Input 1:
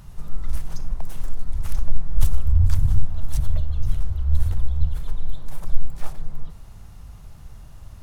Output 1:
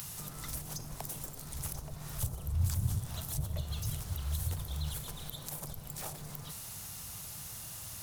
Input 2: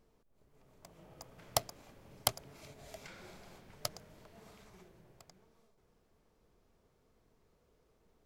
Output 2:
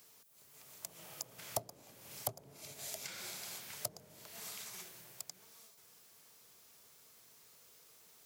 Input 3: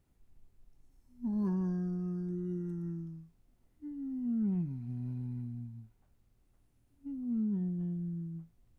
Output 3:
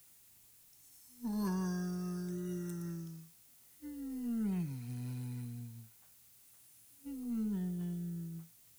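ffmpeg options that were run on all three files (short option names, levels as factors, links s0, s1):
-filter_complex "[0:a]equalizer=f=120:w=0.86:g=9.5,asplit=2[s0][s1];[s1]alimiter=limit=0.266:level=0:latency=1,volume=1.12[s2];[s0][s2]amix=inputs=2:normalize=0,aderivative,acrossover=split=180|740[s3][s4][s5];[s4]tremolo=f=230:d=0.333[s6];[s5]acompressor=threshold=0.00112:ratio=5[s7];[s3][s6][s7]amix=inputs=3:normalize=0,volume=6.68"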